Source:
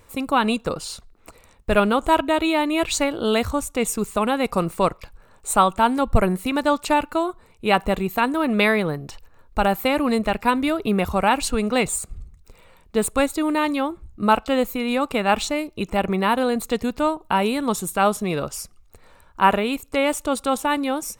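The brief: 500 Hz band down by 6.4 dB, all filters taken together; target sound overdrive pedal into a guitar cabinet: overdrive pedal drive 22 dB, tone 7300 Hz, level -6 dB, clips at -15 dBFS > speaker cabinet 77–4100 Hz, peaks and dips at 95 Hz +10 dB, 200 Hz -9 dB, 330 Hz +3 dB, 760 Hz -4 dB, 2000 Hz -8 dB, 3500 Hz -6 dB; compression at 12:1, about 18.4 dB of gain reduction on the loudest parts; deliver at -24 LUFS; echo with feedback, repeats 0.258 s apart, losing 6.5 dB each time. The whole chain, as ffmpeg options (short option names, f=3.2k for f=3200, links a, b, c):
-filter_complex "[0:a]equalizer=f=500:t=o:g=-7.5,acompressor=threshold=-29dB:ratio=12,aecho=1:1:258|516|774|1032|1290|1548:0.473|0.222|0.105|0.0491|0.0231|0.0109,asplit=2[a][b];[b]highpass=f=720:p=1,volume=22dB,asoftclip=type=tanh:threshold=-15dB[c];[a][c]amix=inputs=2:normalize=0,lowpass=f=7.3k:p=1,volume=-6dB,highpass=77,equalizer=f=95:t=q:w=4:g=10,equalizer=f=200:t=q:w=4:g=-9,equalizer=f=330:t=q:w=4:g=3,equalizer=f=760:t=q:w=4:g=-4,equalizer=f=2k:t=q:w=4:g=-8,equalizer=f=3.5k:t=q:w=4:g=-6,lowpass=f=4.1k:w=0.5412,lowpass=f=4.1k:w=1.3066,volume=3.5dB"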